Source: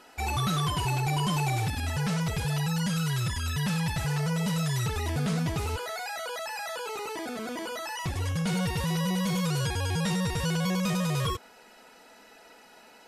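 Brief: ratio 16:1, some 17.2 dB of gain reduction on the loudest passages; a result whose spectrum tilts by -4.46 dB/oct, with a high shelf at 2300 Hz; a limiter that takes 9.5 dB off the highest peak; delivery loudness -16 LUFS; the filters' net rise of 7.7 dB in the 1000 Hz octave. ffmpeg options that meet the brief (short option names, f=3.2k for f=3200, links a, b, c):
-af "equalizer=f=1k:t=o:g=8,highshelf=f=2.3k:g=6.5,acompressor=threshold=-38dB:ratio=16,volume=28dB,alimiter=limit=-7dB:level=0:latency=1"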